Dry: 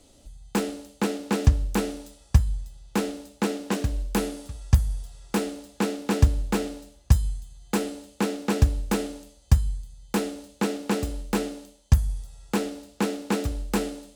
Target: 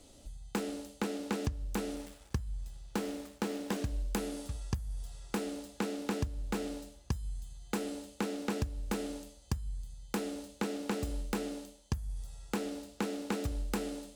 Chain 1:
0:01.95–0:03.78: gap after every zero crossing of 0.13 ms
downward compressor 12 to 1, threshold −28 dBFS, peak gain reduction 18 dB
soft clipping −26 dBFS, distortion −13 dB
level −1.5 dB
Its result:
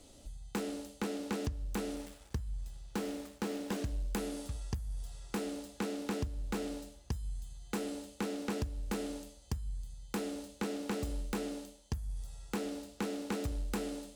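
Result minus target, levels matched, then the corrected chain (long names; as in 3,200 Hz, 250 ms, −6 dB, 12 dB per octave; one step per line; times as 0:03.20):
soft clipping: distortion +9 dB
0:01.95–0:03.78: gap after every zero crossing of 0.13 ms
downward compressor 12 to 1, threshold −28 dBFS, peak gain reduction 18 dB
soft clipping −18.5 dBFS, distortion −21 dB
level −1.5 dB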